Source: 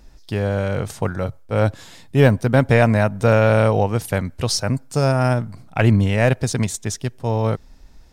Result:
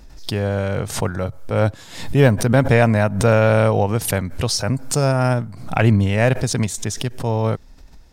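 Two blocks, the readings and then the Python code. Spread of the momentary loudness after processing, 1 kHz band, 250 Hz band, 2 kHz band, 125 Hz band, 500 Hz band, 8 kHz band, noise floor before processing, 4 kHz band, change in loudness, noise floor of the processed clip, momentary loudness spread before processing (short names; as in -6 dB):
10 LU, +0.5 dB, +0.5 dB, +0.5 dB, +0.5 dB, 0.0 dB, +3.0 dB, -45 dBFS, +2.0 dB, +0.5 dB, -43 dBFS, 10 LU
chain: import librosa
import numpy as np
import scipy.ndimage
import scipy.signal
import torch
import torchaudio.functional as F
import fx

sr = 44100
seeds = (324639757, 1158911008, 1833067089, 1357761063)

y = fx.pre_swell(x, sr, db_per_s=95.0)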